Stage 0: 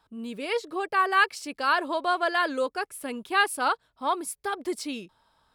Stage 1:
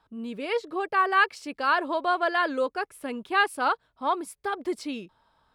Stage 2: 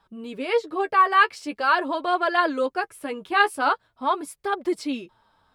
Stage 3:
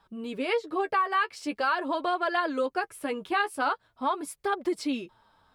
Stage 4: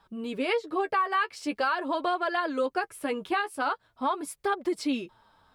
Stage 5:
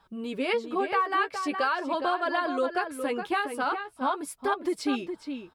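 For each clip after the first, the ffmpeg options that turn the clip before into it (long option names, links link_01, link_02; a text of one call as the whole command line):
ffmpeg -i in.wav -af "highshelf=frequency=5100:gain=-11.5,volume=1dB" out.wav
ffmpeg -i in.wav -af "flanger=delay=4.9:depth=7.4:regen=21:speed=0.44:shape=triangular,volume=6.5dB" out.wav
ffmpeg -i in.wav -af "acompressor=threshold=-24dB:ratio=4" out.wav
ffmpeg -i in.wav -af "alimiter=limit=-19dB:level=0:latency=1:release=391,volume=1.5dB" out.wav
ffmpeg -i in.wav -filter_complex "[0:a]asplit=2[link_01][link_02];[link_02]adelay=414,volume=-7dB,highshelf=frequency=4000:gain=-9.32[link_03];[link_01][link_03]amix=inputs=2:normalize=0" out.wav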